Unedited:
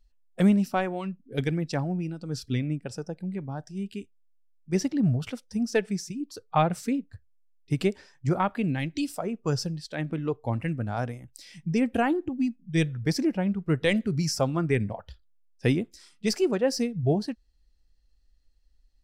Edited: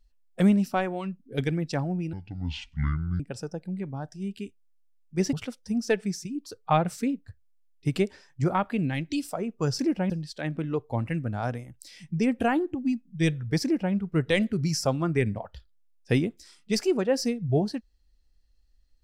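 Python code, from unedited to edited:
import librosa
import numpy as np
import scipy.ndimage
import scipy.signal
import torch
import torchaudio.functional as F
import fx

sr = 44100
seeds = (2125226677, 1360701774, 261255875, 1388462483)

y = fx.edit(x, sr, fx.speed_span(start_s=2.13, length_s=0.62, speed=0.58),
    fx.cut(start_s=4.88, length_s=0.3),
    fx.duplicate(start_s=13.17, length_s=0.31, to_s=9.64), tone=tone)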